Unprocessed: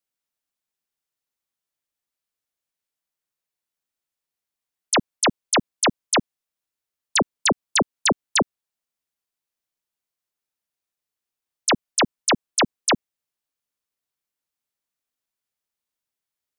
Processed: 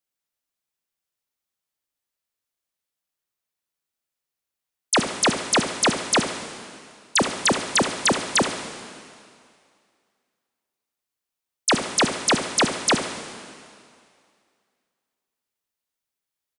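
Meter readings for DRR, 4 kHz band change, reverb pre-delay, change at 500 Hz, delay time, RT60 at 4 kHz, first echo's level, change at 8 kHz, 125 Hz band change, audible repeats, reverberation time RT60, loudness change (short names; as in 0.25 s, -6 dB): 6.0 dB, +1.0 dB, 19 ms, +1.0 dB, 72 ms, 2.2 s, -11.0 dB, +1.0 dB, +1.0 dB, 2, 2.3 s, +0.5 dB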